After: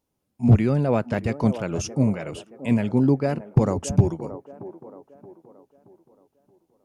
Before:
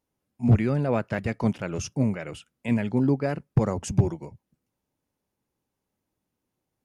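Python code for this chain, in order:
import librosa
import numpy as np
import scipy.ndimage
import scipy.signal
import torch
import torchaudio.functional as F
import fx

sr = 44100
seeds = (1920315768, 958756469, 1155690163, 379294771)

y = fx.peak_eq(x, sr, hz=1800.0, db=-4.5, octaves=1.0)
y = fx.echo_wet_bandpass(y, sr, ms=625, feedback_pct=41, hz=590.0, wet_db=-11)
y = y * librosa.db_to_amplitude(3.5)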